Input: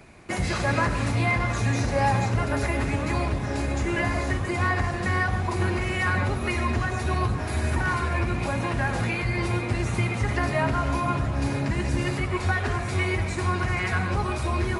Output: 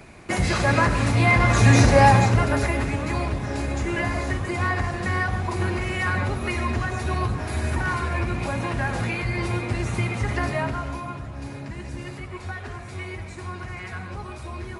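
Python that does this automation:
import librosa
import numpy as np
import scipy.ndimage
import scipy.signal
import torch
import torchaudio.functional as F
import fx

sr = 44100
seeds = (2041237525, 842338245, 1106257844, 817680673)

y = fx.gain(x, sr, db=fx.line((1.13, 4.0), (1.79, 10.5), (2.94, 0.0), (10.47, 0.0), (11.16, -9.0)))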